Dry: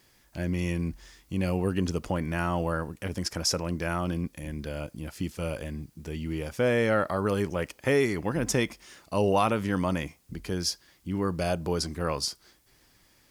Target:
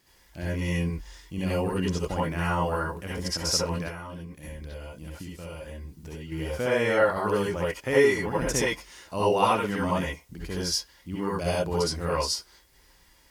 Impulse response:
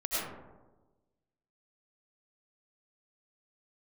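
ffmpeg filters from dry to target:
-filter_complex "[1:a]atrim=start_sample=2205,afade=t=out:st=0.19:d=0.01,atrim=end_sample=8820,asetrate=66150,aresample=44100[a];[0:a][a]afir=irnorm=-1:irlink=0,asettb=1/sr,asplit=3[b][c][d];[b]atrim=end=3.884[e];[c]atrim=start=3.88:end=6.32,asetpts=PTS-STARTPTS,afade=t=in:d=0.004:c=qsin,afade=t=out:st=2.436:d=0.004:c=qsin,acompressor=threshold=-37dB:ratio=10[f];[d]atrim=start=6.316[g];[e][f]acrossfade=d=0.004:c1=hsin:c2=qsin[h];[h][g]acrossfade=d=0.004:c1=qsin:c2=hsin,volume=1.5dB"

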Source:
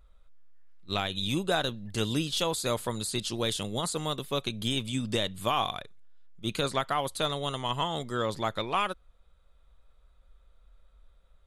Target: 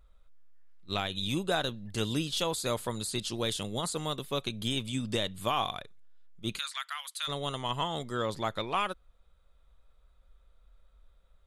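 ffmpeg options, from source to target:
-filter_complex "[0:a]asplit=3[a][b][c];[a]afade=t=out:st=6.57:d=0.02[d];[b]highpass=f=1.4k:w=0.5412,highpass=f=1.4k:w=1.3066,afade=t=in:st=6.57:d=0.02,afade=t=out:st=7.27:d=0.02[e];[c]afade=t=in:st=7.27:d=0.02[f];[d][e][f]amix=inputs=3:normalize=0,volume=-2dB"

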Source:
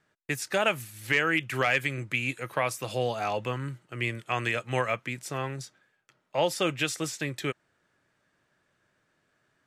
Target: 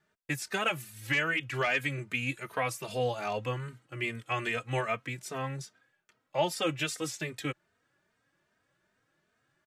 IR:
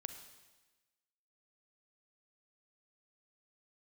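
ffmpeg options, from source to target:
-filter_complex "[0:a]asettb=1/sr,asplit=3[a][b][c];[a]atrim=end=1.244[d];[b]atrim=start=1.24:end=1.78,asetpts=PTS-STARTPTS,afade=t=in:d=0.004:c=qsin,afade=t=out:st=0.536:d=0.004:c=qsin,acrossover=split=7800[e][f];[f]acompressor=threshold=-58dB:ratio=4:attack=1:release=60[g];[e][g]amix=inputs=2:normalize=0[h];[c]atrim=start=1.776[i];[d][h]acrossfade=d=0.004:c1=hsin:c2=qsin[j];[j][i]acrossfade=d=0.004:c1=qsin:c2=hsin,asplit=2[k][l];[l]adelay=3,afreqshift=2.5[m];[k][m]amix=inputs=2:normalize=1"

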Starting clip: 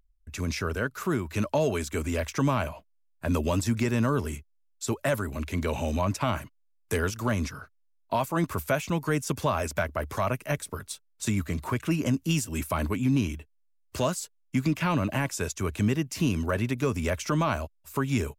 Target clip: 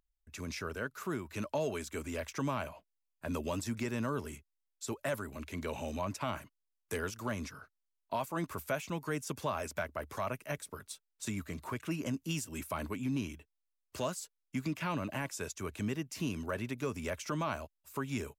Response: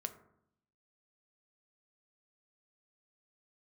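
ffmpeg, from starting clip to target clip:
-af "lowshelf=f=120:g=-9,volume=-8dB"

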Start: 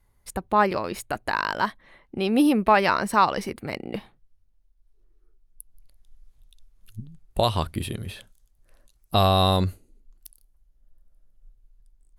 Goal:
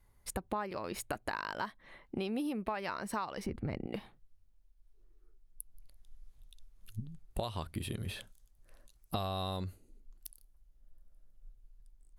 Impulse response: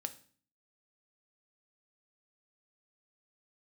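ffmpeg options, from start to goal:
-filter_complex "[0:a]asettb=1/sr,asplit=3[a][b][c];[a]atrim=end=3.464[d];[b]atrim=start=3.46:end=3.87,asetpts=PTS-STARTPTS,afade=t=in:d=0.004:c=qsin,afade=t=out:st=0.406:d=0.004:c=qsin,aemphasis=mode=reproduction:type=riaa[e];[c]atrim=start=3.866[f];[d][e]acrossfade=d=0.004:c1=hsin:c2=qsin[g];[g][f]acrossfade=d=0.004:c1=qsin:c2=hsin,acompressor=threshold=-31dB:ratio=12,volume=-2dB"

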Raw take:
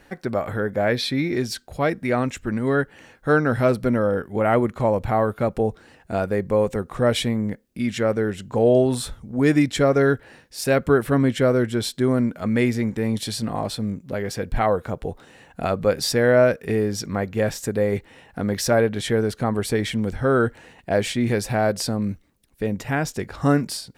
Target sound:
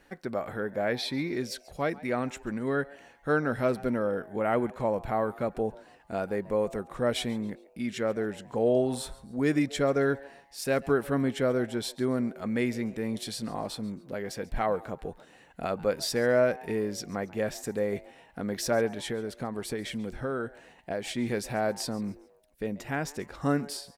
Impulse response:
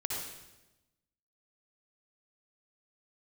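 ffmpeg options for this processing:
-filter_complex "[0:a]equalizer=f=96:t=o:w=0.84:g=-8,asplit=3[a][b][c];[a]afade=t=out:st=18.94:d=0.02[d];[b]acompressor=threshold=-23dB:ratio=3,afade=t=in:st=18.94:d=0.02,afade=t=out:st=21.07:d=0.02[e];[c]afade=t=in:st=21.07:d=0.02[f];[d][e][f]amix=inputs=3:normalize=0,asplit=4[g][h][i][j];[h]adelay=138,afreqshift=140,volume=-21dB[k];[i]adelay=276,afreqshift=280,volume=-29.9dB[l];[j]adelay=414,afreqshift=420,volume=-38.7dB[m];[g][k][l][m]amix=inputs=4:normalize=0,volume=-7.5dB"

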